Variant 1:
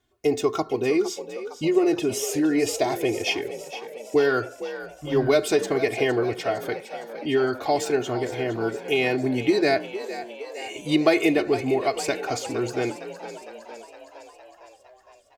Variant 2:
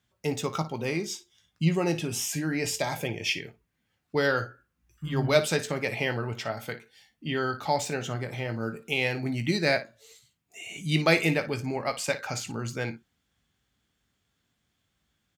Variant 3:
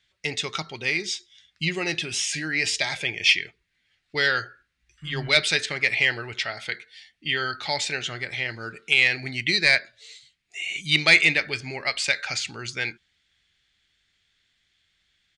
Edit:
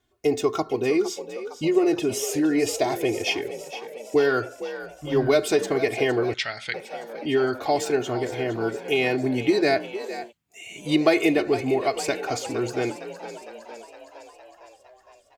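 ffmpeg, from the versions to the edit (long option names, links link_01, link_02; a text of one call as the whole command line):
ffmpeg -i take0.wav -i take1.wav -i take2.wav -filter_complex "[0:a]asplit=3[link_01][link_02][link_03];[link_01]atrim=end=6.342[link_04];[2:a]atrim=start=6.338:end=6.742[link_05];[link_02]atrim=start=6.738:end=10.33[link_06];[1:a]atrim=start=10.23:end=10.85[link_07];[link_03]atrim=start=10.75[link_08];[link_04][link_05]acrossfade=duration=0.004:curve1=hsin:curve2=hsin[link_09];[link_09][link_06]acrossfade=duration=0.004:curve1=hsin:curve2=hsin[link_10];[link_10][link_07]acrossfade=duration=0.1:curve1=tri:curve2=tri[link_11];[link_11][link_08]acrossfade=duration=0.1:curve1=tri:curve2=tri" out.wav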